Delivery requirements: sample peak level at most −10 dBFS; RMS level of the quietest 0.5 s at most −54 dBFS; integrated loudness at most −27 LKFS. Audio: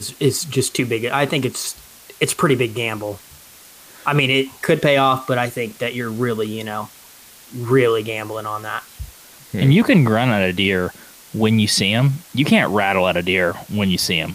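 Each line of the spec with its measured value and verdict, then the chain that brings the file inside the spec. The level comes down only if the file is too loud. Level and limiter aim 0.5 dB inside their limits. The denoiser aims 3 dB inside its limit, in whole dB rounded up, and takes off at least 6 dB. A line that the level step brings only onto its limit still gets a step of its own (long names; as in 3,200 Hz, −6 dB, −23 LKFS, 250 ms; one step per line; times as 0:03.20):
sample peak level −4.0 dBFS: out of spec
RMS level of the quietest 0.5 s −44 dBFS: out of spec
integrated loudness −18.5 LKFS: out of spec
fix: broadband denoise 6 dB, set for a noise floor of −44 dBFS
level −9 dB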